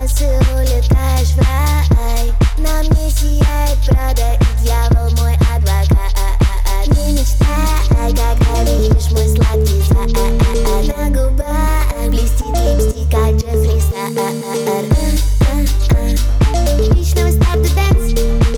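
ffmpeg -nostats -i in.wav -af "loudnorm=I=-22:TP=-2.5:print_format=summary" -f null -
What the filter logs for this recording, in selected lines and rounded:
Input Integrated:    -14.6 LUFS
Input True Peak:      -4.6 dBTP
Input LRA:             1.5 LU
Input Threshold:     -24.6 LUFS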